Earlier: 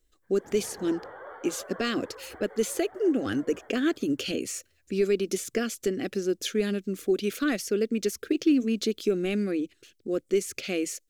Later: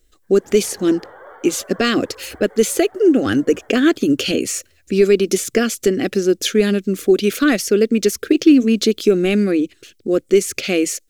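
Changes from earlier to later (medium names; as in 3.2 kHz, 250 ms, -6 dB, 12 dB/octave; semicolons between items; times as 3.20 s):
speech +11.5 dB; background +3.0 dB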